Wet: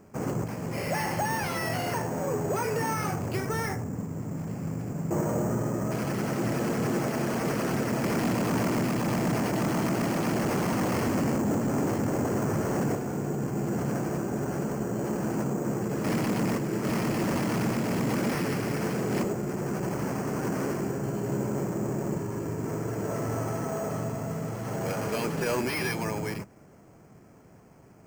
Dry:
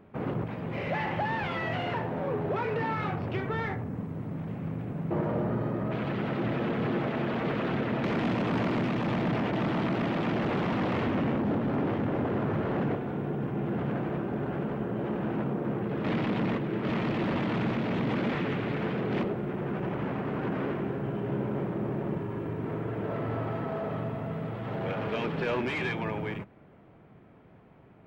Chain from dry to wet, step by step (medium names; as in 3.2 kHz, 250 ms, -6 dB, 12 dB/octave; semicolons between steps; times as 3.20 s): careless resampling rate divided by 6×, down filtered, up hold; trim +1.5 dB